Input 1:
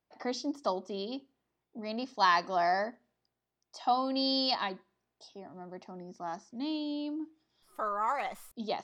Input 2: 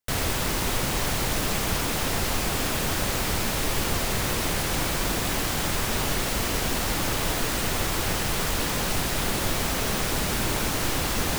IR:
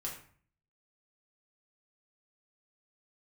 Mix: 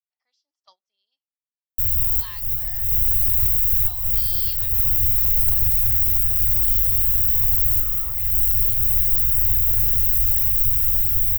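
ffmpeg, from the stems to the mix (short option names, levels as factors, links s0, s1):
-filter_complex "[0:a]highpass=760,highshelf=f=3700:g=-8.5,volume=0.398,asplit=2[s0][s1];[1:a]firequalizer=gain_entry='entry(110,0);entry(160,-26);entry(670,-22);entry(980,-15);entry(1800,-12);entry(3000,-25);entry(4800,-27);entry(7600,-18);entry(11000,-13);entry(16000,12)':delay=0.05:min_phase=1,adelay=1700,volume=1.33[s2];[s1]apad=whole_len=581488[s3];[s2][s3]sidechaincompress=threshold=0.00631:ratio=8:attack=21:release=234[s4];[s0][s4]amix=inputs=2:normalize=0,agate=range=0.0891:threshold=0.00794:ratio=16:detection=peak,firequalizer=gain_entry='entry(100,0);entry(280,-19);entry(2900,3)':delay=0.05:min_phase=1,dynaudnorm=f=210:g=21:m=1.5"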